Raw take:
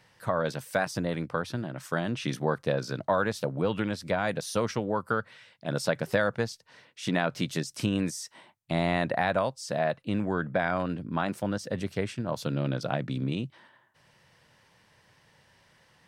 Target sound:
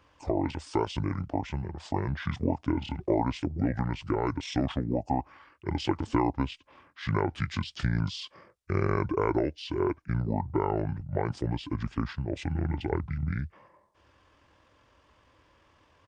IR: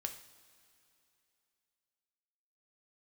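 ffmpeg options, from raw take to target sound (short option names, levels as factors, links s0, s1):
-af "asetrate=25476,aresample=44100,atempo=1.73107"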